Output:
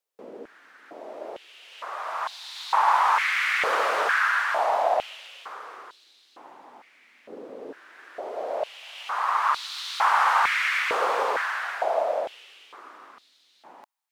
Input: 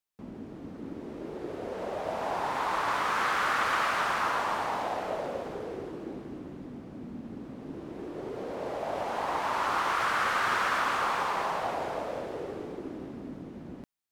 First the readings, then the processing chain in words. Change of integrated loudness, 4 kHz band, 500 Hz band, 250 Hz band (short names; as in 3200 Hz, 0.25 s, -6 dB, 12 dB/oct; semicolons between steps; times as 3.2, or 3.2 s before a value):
+6.5 dB, +5.0 dB, +4.0 dB, -11.5 dB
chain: stepped high-pass 2.2 Hz 480–3900 Hz; gain +1.5 dB